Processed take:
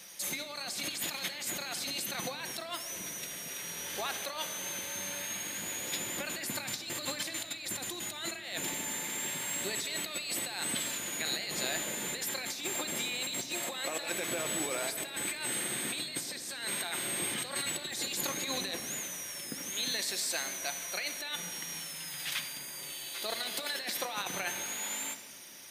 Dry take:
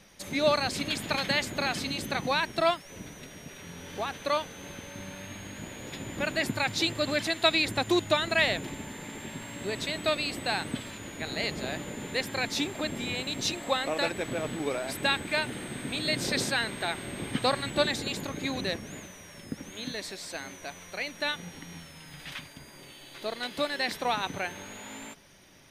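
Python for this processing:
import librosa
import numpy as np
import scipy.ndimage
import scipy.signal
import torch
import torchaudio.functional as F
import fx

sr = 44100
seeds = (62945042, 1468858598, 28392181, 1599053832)

y = fx.riaa(x, sr, side='recording')
y = fx.over_compress(y, sr, threshold_db=-33.0, ratio=-1.0)
y = fx.room_shoebox(y, sr, seeds[0], volume_m3=2700.0, walls='mixed', distance_m=0.87)
y = y * librosa.db_to_amplitude(-4.0)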